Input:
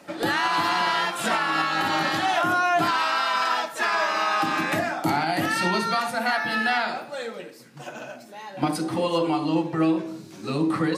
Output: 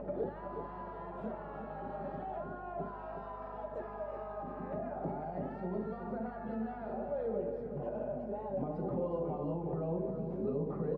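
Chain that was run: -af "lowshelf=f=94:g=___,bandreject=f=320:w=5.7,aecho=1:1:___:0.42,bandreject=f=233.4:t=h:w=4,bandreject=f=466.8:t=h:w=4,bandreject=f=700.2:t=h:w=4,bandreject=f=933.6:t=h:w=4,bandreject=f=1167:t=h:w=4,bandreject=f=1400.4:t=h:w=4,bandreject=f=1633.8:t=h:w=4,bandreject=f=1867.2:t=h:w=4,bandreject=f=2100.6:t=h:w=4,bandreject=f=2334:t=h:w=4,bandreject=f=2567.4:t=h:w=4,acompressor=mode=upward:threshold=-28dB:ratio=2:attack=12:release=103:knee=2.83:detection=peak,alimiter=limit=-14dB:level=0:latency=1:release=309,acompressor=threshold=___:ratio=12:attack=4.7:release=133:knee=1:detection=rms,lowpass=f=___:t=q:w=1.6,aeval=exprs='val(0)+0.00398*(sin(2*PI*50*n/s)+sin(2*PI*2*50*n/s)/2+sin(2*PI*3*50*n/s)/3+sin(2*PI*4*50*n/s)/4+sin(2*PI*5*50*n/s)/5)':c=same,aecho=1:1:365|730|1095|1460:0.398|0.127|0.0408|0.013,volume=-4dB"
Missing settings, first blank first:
-2, 4.9, -28dB, 510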